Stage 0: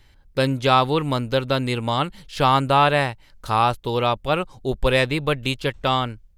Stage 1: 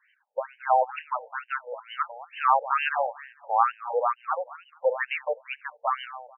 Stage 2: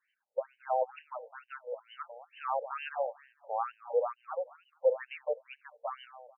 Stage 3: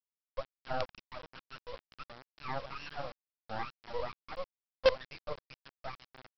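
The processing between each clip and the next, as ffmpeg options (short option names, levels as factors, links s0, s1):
-filter_complex "[0:a]asplit=2[s0][s1];[s1]adelay=218,lowpass=f=2200:p=1,volume=0.178,asplit=2[s2][s3];[s3]adelay=218,lowpass=f=2200:p=1,volume=0.26,asplit=2[s4][s5];[s5]adelay=218,lowpass=f=2200:p=1,volume=0.26[s6];[s0][s2][s4][s6]amix=inputs=4:normalize=0,afftfilt=real='re*between(b*sr/1024,620*pow(2200/620,0.5+0.5*sin(2*PI*2.2*pts/sr))/1.41,620*pow(2200/620,0.5+0.5*sin(2*PI*2.2*pts/sr))*1.41)':imag='im*between(b*sr/1024,620*pow(2200/620,0.5+0.5*sin(2*PI*2.2*pts/sr))/1.41,620*pow(2200/620,0.5+0.5*sin(2*PI*2.2*pts/sr))*1.41)':win_size=1024:overlap=0.75"
-af "equalizer=f=500:t=o:w=1:g=8,equalizer=f=1000:t=o:w=1:g=-7,equalizer=f=2000:t=o:w=1:g=-7,volume=0.398"
-af "flanger=delay=2.9:depth=7.4:regen=-30:speed=1.4:shape=triangular,aresample=11025,acrusher=bits=5:dc=4:mix=0:aa=0.000001,aresample=44100,volume=1.26"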